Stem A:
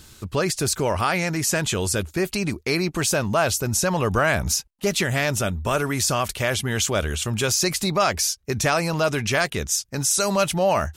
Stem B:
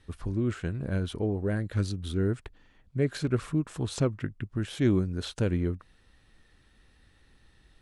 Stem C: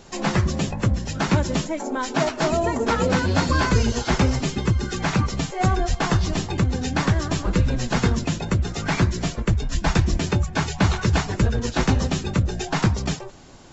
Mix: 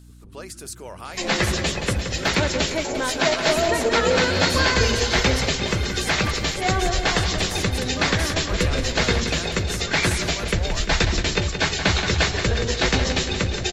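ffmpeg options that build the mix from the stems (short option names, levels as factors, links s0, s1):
-filter_complex "[0:a]highpass=260,volume=0.188[s0];[1:a]acompressor=threshold=0.0158:ratio=1.5,volume=0.168,asplit=2[s1][s2];[s2]volume=0.562[s3];[2:a]equalizer=f=125:t=o:w=1:g=-5,equalizer=f=250:t=o:w=1:g=-3,equalizer=f=500:t=o:w=1:g=6,equalizer=f=1000:t=o:w=1:g=-3,equalizer=f=2000:t=o:w=1:g=7,equalizer=f=4000:t=o:w=1:g=9,adelay=1050,volume=0.841,asplit=2[s4][s5];[s5]volume=0.376[s6];[s3][s6]amix=inputs=2:normalize=0,aecho=0:1:174|348|522|696|870|1044|1218|1392|1566:1|0.59|0.348|0.205|0.121|0.0715|0.0422|0.0249|0.0147[s7];[s0][s1][s4][s7]amix=inputs=4:normalize=0,equalizer=f=9700:w=1.2:g=5.5,aeval=exprs='val(0)+0.00562*(sin(2*PI*60*n/s)+sin(2*PI*2*60*n/s)/2+sin(2*PI*3*60*n/s)/3+sin(2*PI*4*60*n/s)/4+sin(2*PI*5*60*n/s)/5)':c=same"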